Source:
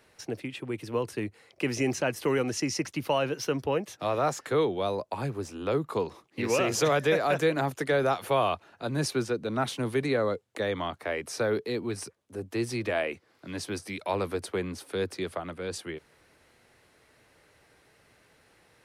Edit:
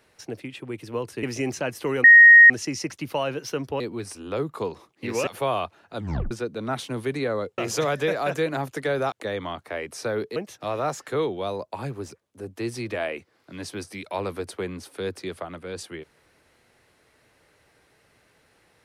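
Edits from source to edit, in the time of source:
1.23–1.64 s: delete
2.45 s: add tone 1.87 kHz -6.5 dBFS 0.46 s
3.75–5.50 s: swap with 11.71–12.06 s
6.62–8.16 s: move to 10.47 s
8.85 s: tape stop 0.35 s

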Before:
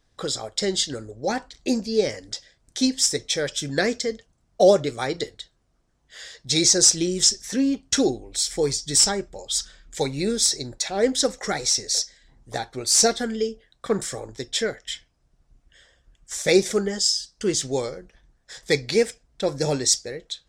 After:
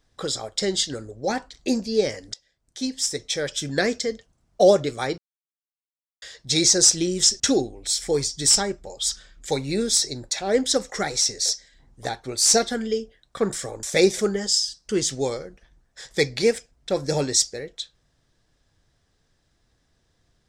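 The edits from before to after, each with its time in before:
2.34–3.62 s: fade in, from -18 dB
5.18–6.22 s: mute
7.40–7.89 s: delete
14.32–16.35 s: delete

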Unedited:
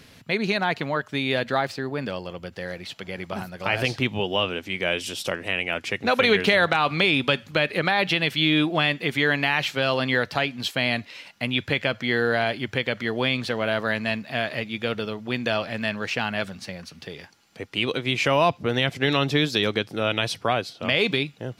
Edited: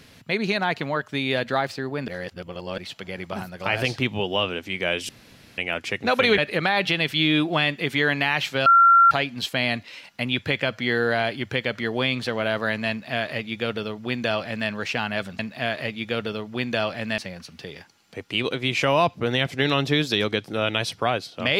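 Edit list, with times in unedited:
2.08–2.78 s: reverse
5.09–5.58 s: room tone
6.38–7.60 s: delete
9.88–10.33 s: bleep 1.37 kHz -10.5 dBFS
14.12–15.91 s: copy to 16.61 s

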